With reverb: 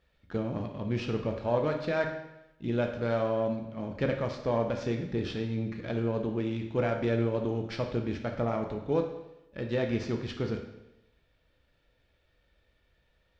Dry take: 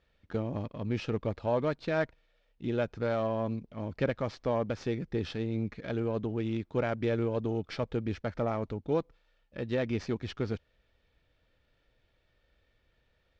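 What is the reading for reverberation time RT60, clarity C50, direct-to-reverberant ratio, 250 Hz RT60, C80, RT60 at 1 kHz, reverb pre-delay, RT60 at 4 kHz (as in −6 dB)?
0.90 s, 7.0 dB, 3.5 dB, 0.90 s, 9.5 dB, 0.90 s, 11 ms, 0.85 s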